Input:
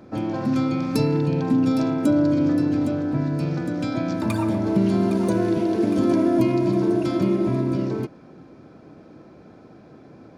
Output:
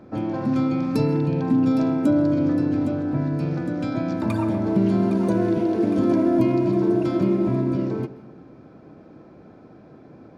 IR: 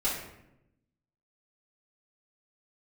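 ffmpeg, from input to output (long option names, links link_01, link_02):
-filter_complex "[0:a]highshelf=frequency=3400:gain=-9,asplit=2[link_01][link_02];[1:a]atrim=start_sample=2205,adelay=130[link_03];[link_02][link_03]afir=irnorm=-1:irlink=0,volume=-24.5dB[link_04];[link_01][link_04]amix=inputs=2:normalize=0"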